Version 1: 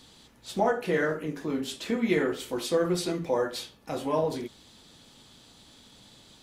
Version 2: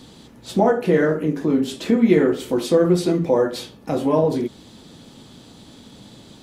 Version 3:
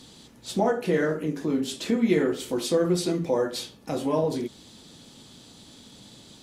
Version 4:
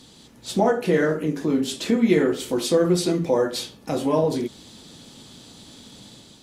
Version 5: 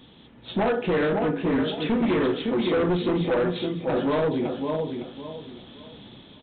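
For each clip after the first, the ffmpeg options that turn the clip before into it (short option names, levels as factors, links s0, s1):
-filter_complex "[0:a]equalizer=f=220:w=0.33:g=10.5,asplit=2[s0][s1];[s1]acompressor=threshold=0.0447:ratio=6,volume=0.708[s2];[s0][s2]amix=inputs=2:normalize=0"
-af "equalizer=f=7400:t=o:w=2.7:g=8,volume=0.447"
-af "dynaudnorm=f=140:g=5:m=1.58"
-af "aecho=1:1:559|1118|1677|2236:0.473|0.137|0.0398|0.0115,aresample=8000,volume=9.44,asoftclip=hard,volume=0.106,aresample=44100"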